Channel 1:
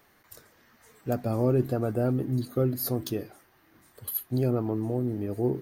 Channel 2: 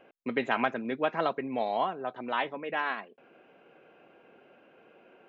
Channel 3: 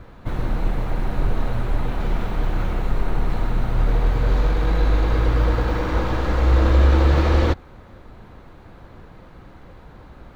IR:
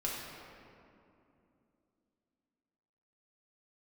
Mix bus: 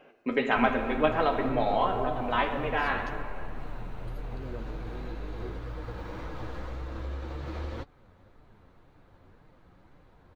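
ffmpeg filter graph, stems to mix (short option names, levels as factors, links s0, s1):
-filter_complex "[0:a]lowpass=f=6800:w=0.5412,lowpass=f=6800:w=1.3066,volume=0.251[s0];[1:a]volume=1.26,asplit=2[s1][s2];[s2]volume=0.708[s3];[2:a]acompressor=threshold=0.126:ratio=4,adelay=300,volume=0.316[s4];[3:a]atrim=start_sample=2205[s5];[s3][s5]afir=irnorm=-1:irlink=0[s6];[s0][s1][s4][s6]amix=inputs=4:normalize=0,flanger=delay=6.6:depth=4.8:regen=44:speed=1.9:shape=sinusoidal"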